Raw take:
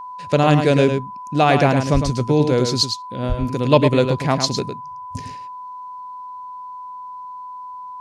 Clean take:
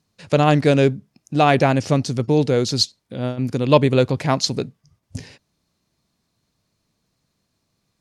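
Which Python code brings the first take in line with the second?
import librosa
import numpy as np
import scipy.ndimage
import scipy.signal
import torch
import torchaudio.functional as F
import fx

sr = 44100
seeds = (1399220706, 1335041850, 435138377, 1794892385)

y = fx.notch(x, sr, hz=1000.0, q=30.0)
y = fx.highpass(y, sr, hz=140.0, slope=24, at=(1.93, 2.05), fade=0.02)
y = fx.highpass(y, sr, hz=140.0, slope=24, at=(3.28, 3.4), fade=0.02)
y = fx.fix_echo_inverse(y, sr, delay_ms=106, level_db=-7.0)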